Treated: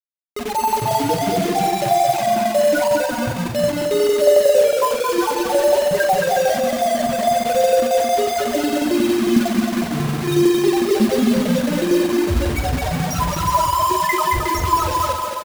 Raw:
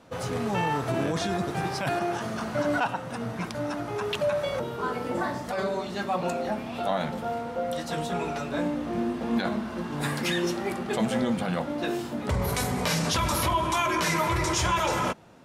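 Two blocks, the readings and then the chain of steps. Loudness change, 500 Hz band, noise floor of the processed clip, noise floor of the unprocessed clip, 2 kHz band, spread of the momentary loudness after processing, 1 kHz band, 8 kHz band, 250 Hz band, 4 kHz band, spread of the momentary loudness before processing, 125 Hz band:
+10.5 dB, +13.0 dB, -25 dBFS, -36 dBFS, +5.5 dB, 6 LU, +10.5 dB, +8.5 dB, +9.5 dB, +7.0 dB, 7 LU, +6.0 dB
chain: dynamic EQ 180 Hz, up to -5 dB, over -43 dBFS, Q 1; AGC gain up to 16 dB; wavefolder -9.5 dBFS; loudest bins only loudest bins 1; tremolo saw down 11 Hz, depth 75%; bit-crush 6-bit; doubler 46 ms -8 dB; bouncing-ball echo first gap 0.22 s, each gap 0.65×, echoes 5; gain +8.5 dB

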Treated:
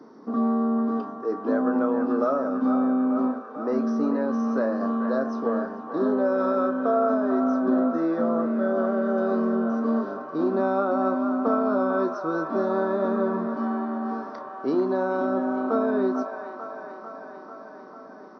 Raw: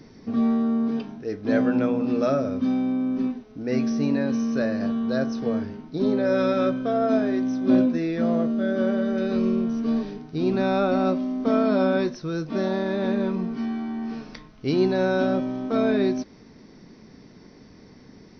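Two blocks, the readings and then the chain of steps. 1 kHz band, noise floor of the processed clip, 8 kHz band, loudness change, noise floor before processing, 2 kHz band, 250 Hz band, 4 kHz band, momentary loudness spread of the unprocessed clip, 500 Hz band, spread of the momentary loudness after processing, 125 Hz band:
+4.5 dB, -43 dBFS, n/a, -0.5 dB, -49 dBFS, -1.5 dB, -1.5 dB, under -10 dB, 8 LU, +0.5 dB, 11 LU, -9.0 dB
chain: HPF 240 Hz 24 dB/oct; resonant high shelf 1700 Hz -11.5 dB, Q 3; compressor, threshold -22 dBFS, peak gain reduction 7.5 dB; doubler 31 ms -13 dB; band-limited delay 0.445 s, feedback 71%, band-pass 1400 Hz, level -5 dB; gain +2 dB

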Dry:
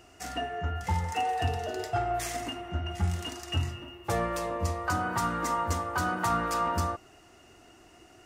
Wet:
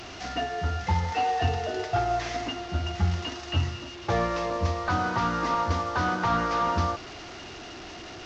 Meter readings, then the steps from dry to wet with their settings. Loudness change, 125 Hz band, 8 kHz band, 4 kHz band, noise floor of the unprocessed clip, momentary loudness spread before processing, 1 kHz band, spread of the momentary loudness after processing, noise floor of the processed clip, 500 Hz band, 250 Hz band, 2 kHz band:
+3.0 dB, +3.5 dB, -4.0 dB, +4.0 dB, -56 dBFS, 7 LU, +3.0 dB, 15 LU, -42 dBFS, +3.5 dB, +3.5 dB, +3.0 dB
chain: delta modulation 32 kbps, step -38.5 dBFS; gain +3.5 dB

